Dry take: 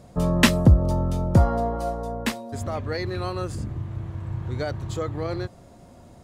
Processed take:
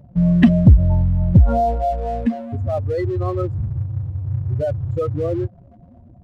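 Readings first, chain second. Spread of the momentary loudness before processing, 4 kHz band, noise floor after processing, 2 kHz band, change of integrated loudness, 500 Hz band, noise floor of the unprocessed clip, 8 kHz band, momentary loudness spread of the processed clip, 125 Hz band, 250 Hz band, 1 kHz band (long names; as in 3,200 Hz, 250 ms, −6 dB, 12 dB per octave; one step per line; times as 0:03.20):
14 LU, below −10 dB, −47 dBFS, −6.0 dB, +6.0 dB, +5.0 dB, −49 dBFS, below −20 dB, 12 LU, +6.5 dB, +7.0 dB, +4.5 dB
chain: expanding power law on the bin magnitudes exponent 2.7
leveller curve on the samples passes 1
notch filter 440 Hz, Q 12
level +4 dB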